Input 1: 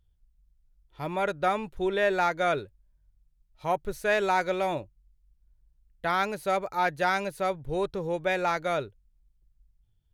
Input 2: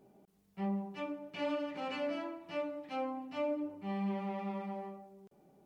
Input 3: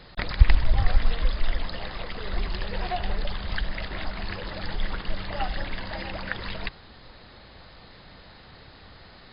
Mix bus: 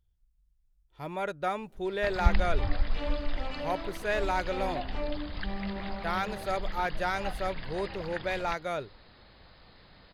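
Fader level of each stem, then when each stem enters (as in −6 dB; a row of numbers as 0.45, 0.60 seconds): −5.0, −1.0, −7.5 decibels; 0.00, 1.60, 1.85 seconds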